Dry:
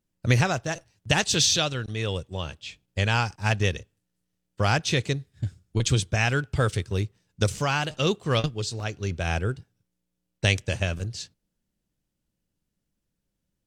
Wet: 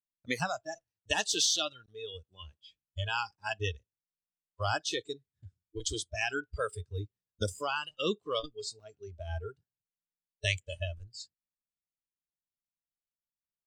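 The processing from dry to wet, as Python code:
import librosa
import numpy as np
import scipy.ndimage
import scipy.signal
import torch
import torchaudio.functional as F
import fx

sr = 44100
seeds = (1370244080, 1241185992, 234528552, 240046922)

y = fx.noise_reduce_blind(x, sr, reduce_db=24)
y = F.gain(torch.from_numpy(y), -6.0).numpy()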